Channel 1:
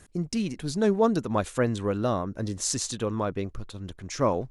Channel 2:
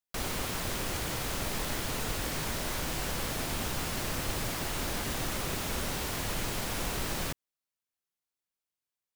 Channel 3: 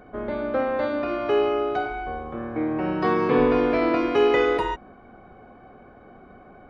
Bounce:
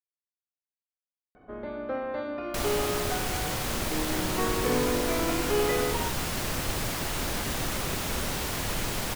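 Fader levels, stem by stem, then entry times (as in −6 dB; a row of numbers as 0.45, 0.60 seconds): muted, +3.0 dB, −8.0 dB; muted, 2.40 s, 1.35 s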